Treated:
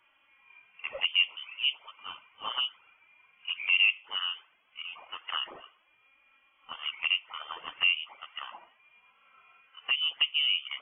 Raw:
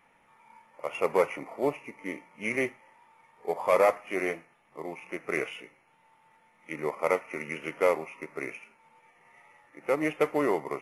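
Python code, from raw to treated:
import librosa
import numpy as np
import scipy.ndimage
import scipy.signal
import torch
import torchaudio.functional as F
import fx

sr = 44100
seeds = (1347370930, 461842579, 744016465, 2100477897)

y = fx.env_flanger(x, sr, rest_ms=3.8, full_db=-23.5)
y = fx.env_lowpass_down(y, sr, base_hz=1100.0, full_db=-26.5)
y = fx.freq_invert(y, sr, carrier_hz=3300)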